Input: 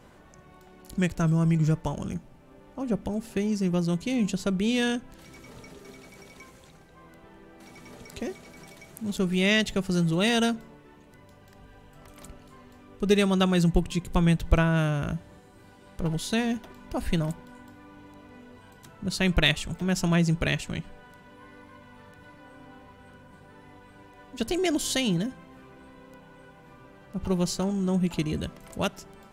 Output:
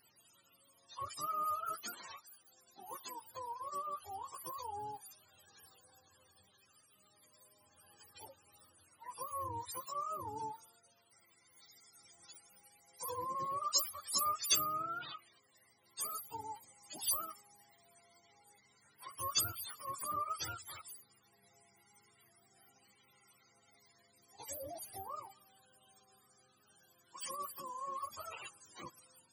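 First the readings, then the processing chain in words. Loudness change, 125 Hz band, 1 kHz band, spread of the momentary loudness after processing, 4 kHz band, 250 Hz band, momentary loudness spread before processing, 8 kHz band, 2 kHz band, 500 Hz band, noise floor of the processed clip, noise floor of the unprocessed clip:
-13.0 dB, -31.0 dB, -2.5 dB, 21 LU, -11.0 dB, -34.0 dB, 14 LU, -2.0 dB, -22.5 dB, -21.0 dB, -71 dBFS, -53 dBFS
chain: spectrum mirrored in octaves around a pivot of 450 Hz; pre-emphasis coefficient 0.97; gain +2.5 dB

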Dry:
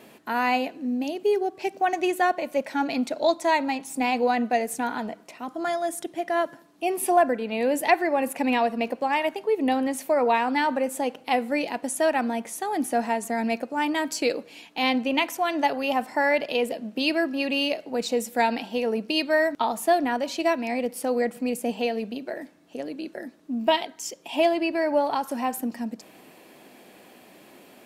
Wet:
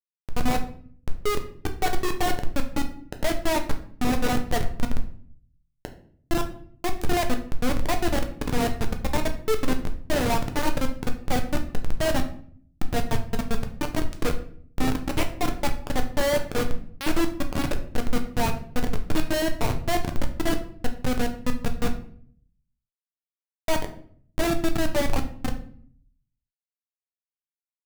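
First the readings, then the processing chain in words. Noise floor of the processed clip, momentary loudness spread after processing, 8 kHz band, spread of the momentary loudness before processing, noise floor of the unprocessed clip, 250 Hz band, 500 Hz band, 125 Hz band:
under -85 dBFS, 10 LU, -0.5 dB, 9 LU, -52 dBFS, -2.0 dB, -5.0 dB, n/a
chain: notches 60/120/180/240/300 Hz; Schmitt trigger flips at -19.5 dBFS; shoebox room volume 67 m³, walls mixed, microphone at 0.43 m; gain +2 dB

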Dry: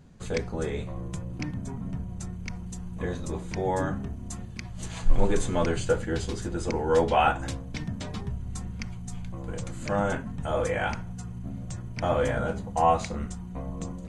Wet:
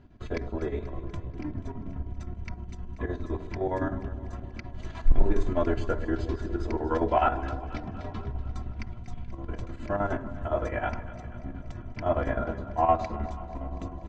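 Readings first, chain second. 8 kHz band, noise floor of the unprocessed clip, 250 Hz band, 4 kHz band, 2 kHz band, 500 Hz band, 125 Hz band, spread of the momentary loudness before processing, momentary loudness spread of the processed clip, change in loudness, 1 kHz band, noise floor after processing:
under -15 dB, -39 dBFS, -1.0 dB, -10.0 dB, -4.5 dB, -2.5 dB, -2.0 dB, 13 LU, 13 LU, -2.0 dB, -1.5 dB, -43 dBFS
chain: dynamic EQ 2900 Hz, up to -6 dB, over -50 dBFS, Q 1.4; comb 3 ms, depth 70%; soft clip -8 dBFS, distortion -16 dB; chopper 9.7 Hz, depth 60%, duty 65%; air absorption 240 m; echo with dull and thin repeats by turns 0.121 s, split 840 Hz, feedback 80%, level -13 dB

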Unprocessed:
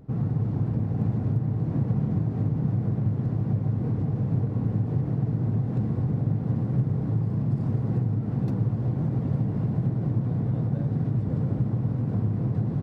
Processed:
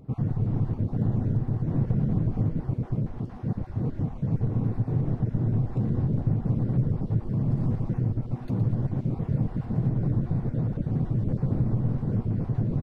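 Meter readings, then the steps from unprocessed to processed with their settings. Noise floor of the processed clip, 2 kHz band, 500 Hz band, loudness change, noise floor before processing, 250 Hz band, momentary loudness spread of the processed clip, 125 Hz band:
-39 dBFS, n/a, -0.5 dB, -1.0 dB, -30 dBFS, -1.0 dB, 4 LU, -1.0 dB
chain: random spectral dropouts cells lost 24%; frequency-shifting echo 0.116 s, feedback 55%, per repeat -120 Hz, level -9 dB

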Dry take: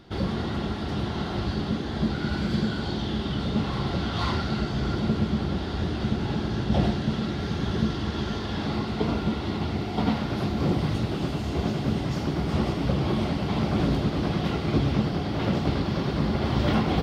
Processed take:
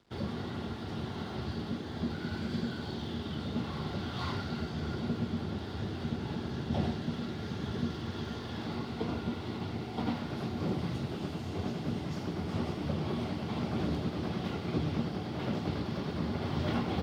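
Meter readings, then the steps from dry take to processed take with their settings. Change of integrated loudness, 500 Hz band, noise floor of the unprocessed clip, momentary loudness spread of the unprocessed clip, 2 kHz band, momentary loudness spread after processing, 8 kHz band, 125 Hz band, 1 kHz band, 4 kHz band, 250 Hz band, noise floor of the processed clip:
-8.5 dB, -8.5 dB, -31 dBFS, 5 LU, -8.5 dB, 5 LU, n/a, -9.0 dB, -8.5 dB, -9.0 dB, -8.5 dB, -40 dBFS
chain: crossover distortion -51 dBFS; frequency shift +18 Hz; gain -8.5 dB

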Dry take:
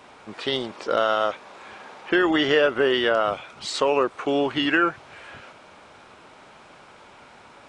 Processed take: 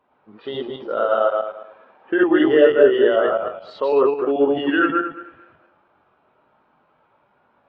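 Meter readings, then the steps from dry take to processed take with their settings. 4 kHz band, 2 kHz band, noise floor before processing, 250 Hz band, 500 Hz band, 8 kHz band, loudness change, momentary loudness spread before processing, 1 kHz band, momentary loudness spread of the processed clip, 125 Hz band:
-7.0 dB, -0.5 dB, -49 dBFS, +5.0 dB, +6.5 dB, under -30 dB, +4.0 dB, 22 LU, +1.0 dB, 16 LU, -2.5 dB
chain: regenerating reverse delay 0.109 s, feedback 54%, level 0 dB; hard clip -7 dBFS, distortion -28 dB; Gaussian blur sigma 1.9 samples; bell 2200 Hz -3.5 dB 0.2 oct; spectral expander 1.5:1; gain +4.5 dB

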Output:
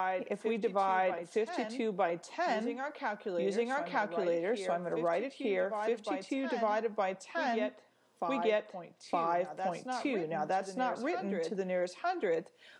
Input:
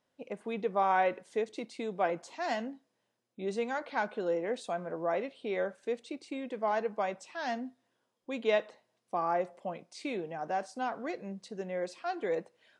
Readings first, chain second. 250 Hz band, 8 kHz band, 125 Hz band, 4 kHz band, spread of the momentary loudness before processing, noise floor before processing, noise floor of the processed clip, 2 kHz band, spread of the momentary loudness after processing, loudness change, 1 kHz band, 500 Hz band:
+2.0 dB, +1.5 dB, +2.0 dB, +0.5 dB, 11 LU, -80 dBFS, -60 dBFS, +1.0 dB, 5 LU, +0.5 dB, 0.0 dB, +1.0 dB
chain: reverse echo 0.914 s -8 dB; three-band squash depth 70%

